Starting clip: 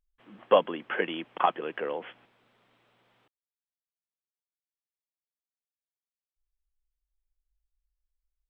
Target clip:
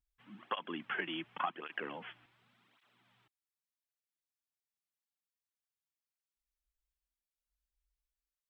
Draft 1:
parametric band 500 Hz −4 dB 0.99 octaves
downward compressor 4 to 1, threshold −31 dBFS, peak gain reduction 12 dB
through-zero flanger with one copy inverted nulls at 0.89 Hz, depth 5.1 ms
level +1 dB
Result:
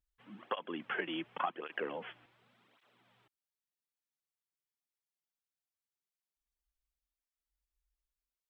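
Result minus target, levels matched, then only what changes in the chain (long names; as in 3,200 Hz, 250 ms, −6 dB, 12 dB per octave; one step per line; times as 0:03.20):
500 Hz band +4.5 dB
change: parametric band 500 Hz −13 dB 0.99 octaves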